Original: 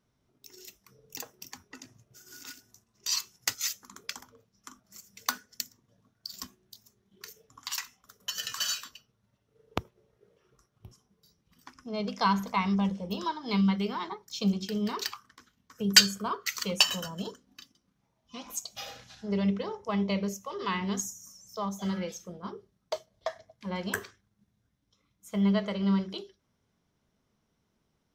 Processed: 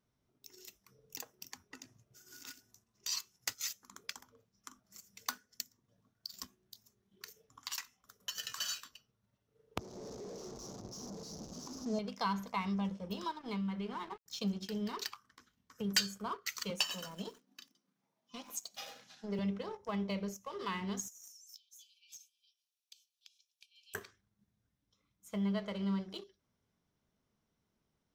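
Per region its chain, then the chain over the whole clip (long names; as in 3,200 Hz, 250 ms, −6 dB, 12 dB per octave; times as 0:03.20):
0:09.79–0:11.99: linear delta modulator 32 kbit/s, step −40.5 dBFS + drawn EQ curve 130 Hz 0 dB, 220 Hz +10 dB, 660 Hz +6 dB, 1,200 Hz −2 dB, 2,100 Hz −24 dB, 6,300 Hz +13 dB + one half of a high-frequency compander decoder only
0:13.39–0:14.26: downward compressor 2.5 to 1, threshold −28 dBFS + centre clipping without the shift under −44.5 dBFS + high-frequency loss of the air 200 metres
0:16.70–0:19.39: high-pass filter 170 Hz 24 dB per octave + feedback echo at a low word length 89 ms, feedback 35%, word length 7 bits, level −15 dB
0:21.08–0:23.95: high-shelf EQ 7,000 Hz +5 dB + downward compressor 12 to 1, threshold −41 dBFS + linear-phase brick-wall high-pass 2,300 Hz
whole clip: leveller curve on the samples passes 1; downward compressor 1.5 to 1, threshold −42 dBFS; level −4.5 dB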